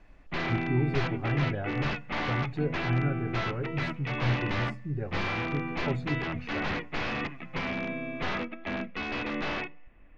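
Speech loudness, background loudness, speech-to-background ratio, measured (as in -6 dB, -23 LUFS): -33.5 LUFS, -33.0 LUFS, -0.5 dB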